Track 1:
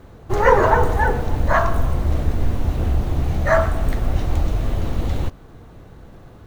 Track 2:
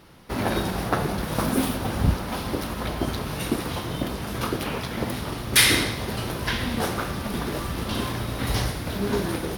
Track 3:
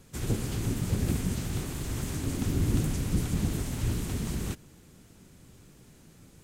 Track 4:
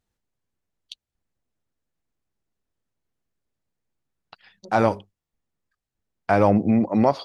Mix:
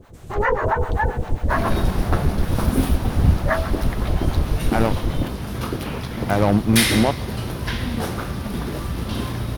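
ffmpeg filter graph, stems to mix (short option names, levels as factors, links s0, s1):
-filter_complex "[0:a]acrossover=split=620[s0][s1];[s0]aeval=exprs='val(0)*(1-1/2+1/2*cos(2*PI*7.5*n/s))':c=same[s2];[s1]aeval=exprs='val(0)*(1-1/2-1/2*cos(2*PI*7.5*n/s))':c=same[s3];[s2][s3]amix=inputs=2:normalize=0,volume=1.33[s4];[1:a]lowshelf=f=230:g=8,adelay=1200,volume=0.794[s5];[2:a]volume=0.251[s6];[3:a]lowshelf=f=190:g=9.5,aeval=exprs='0.708*(cos(1*acos(clip(val(0)/0.708,-1,1)))-cos(1*PI/2))+0.0631*(cos(7*acos(clip(val(0)/0.708,-1,1)))-cos(7*PI/2))':c=same,volume=0.75[s7];[s4][s6]amix=inputs=2:normalize=0,acrossover=split=3200[s8][s9];[s9]acompressor=threshold=0.00316:ratio=4:attack=1:release=60[s10];[s8][s10]amix=inputs=2:normalize=0,alimiter=limit=0.335:level=0:latency=1:release=266,volume=1[s11];[s5][s7][s11]amix=inputs=3:normalize=0"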